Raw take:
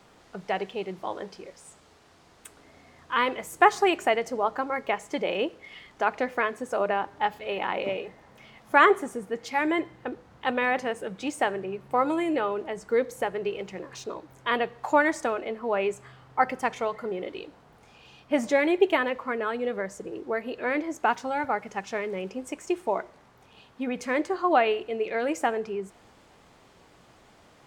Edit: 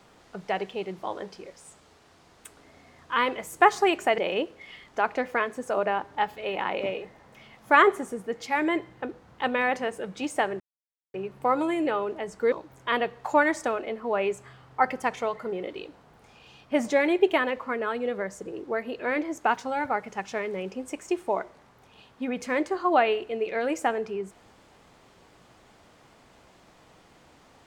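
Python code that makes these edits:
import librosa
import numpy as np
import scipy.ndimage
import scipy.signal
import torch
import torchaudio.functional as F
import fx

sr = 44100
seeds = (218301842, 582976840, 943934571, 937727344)

y = fx.edit(x, sr, fx.cut(start_s=4.18, length_s=1.03),
    fx.insert_silence(at_s=11.63, length_s=0.54),
    fx.cut(start_s=13.01, length_s=1.1), tone=tone)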